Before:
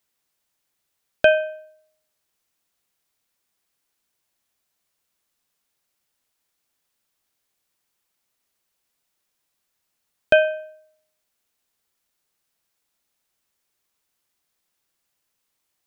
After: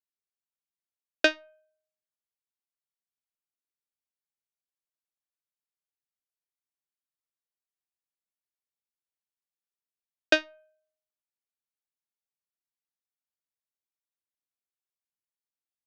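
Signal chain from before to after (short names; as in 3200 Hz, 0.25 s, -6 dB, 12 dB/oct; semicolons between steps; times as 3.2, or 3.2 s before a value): added harmonics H 2 -19 dB, 3 -9 dB, 4 -23 dB, 6 -38 dB, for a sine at -2.5 dBFS; gain -1.5 dB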